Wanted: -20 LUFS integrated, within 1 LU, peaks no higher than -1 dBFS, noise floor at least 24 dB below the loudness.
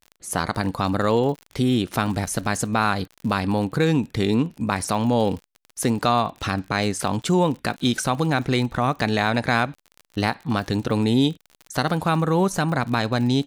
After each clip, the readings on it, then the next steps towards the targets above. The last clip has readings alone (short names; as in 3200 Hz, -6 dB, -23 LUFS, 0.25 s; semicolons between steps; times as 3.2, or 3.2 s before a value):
ticks 49/s; loudness -23.0 LUFS; peak -5.5 dBFS; loudness target -20.0 LUFS
-> de-click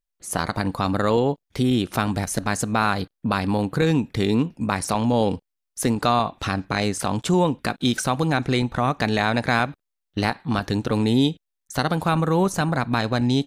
ticks 0.15/s; loudness -23.0 LUFS; peak -5.5 dBFS; loudness target -20.0 LUFS
-> gain +3 dB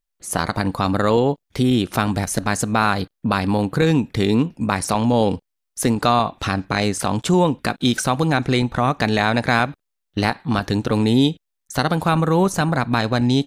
loudness -20.0 LUFS; peak -2.5 dBFS; noise floor -78 dBFS